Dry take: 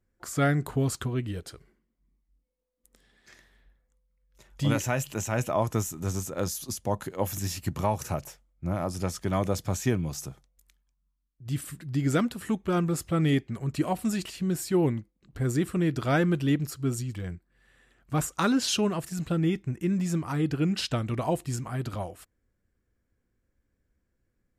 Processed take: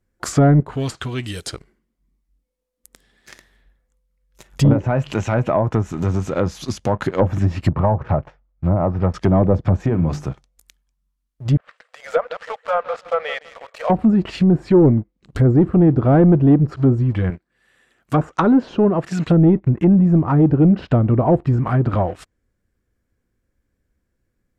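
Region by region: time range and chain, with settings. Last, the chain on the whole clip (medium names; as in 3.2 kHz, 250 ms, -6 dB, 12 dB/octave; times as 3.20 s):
0.60–1.47 s: pre-emphasis filter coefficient 0.9 + power-law waveshaper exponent 0.7
4.73–7.00 s: band-stop 1.8 kHz, Q 28 + compression 1.5:1, threshold -36 dBFS
7.70–9.14 s: low-pass 1.4 kHz + peaking EQ 290 Hz -5.5 dB 1.8 oct
9.80–10.29 s: treble shelf 6.2 kHz +11 dB + compression 12:1, threshold -26 dBFS + hum notches 50/100/150/200/250/300/350/400 Hz
11.57–13.90 s: brick-wall FIR high-pass 450 Hz + tape spacing loss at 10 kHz 32 dB + feedback delay 161 ms, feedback 36%, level -14 dB
17.30–19.29 s: high-pass 250 Hz 6 dB/octave + hard clipper -14 dBFS
whole clip: waveshaping leveller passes 2; low-pass that closes with the level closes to 700 Hz, closed at -19.5 dBFS; trim +8 dB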